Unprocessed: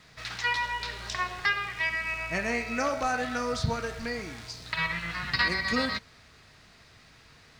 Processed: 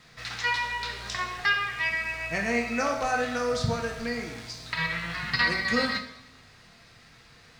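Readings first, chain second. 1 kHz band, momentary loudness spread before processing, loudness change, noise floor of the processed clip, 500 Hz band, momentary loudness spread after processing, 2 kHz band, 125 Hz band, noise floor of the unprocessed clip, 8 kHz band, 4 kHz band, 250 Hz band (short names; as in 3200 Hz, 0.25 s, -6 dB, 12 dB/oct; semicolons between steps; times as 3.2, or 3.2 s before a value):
+1.0 dB, 8 LU, +1.5 dB, -54 dBFS, +3.0 dB, 8 LU, +2.0 dB, +1.5 dB, -56 dBFS, +1.5 dB, +1.5 dB, +2.0 dB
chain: two-slope reverb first 0.62 s, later 1.6 s, DRR 3.5 dB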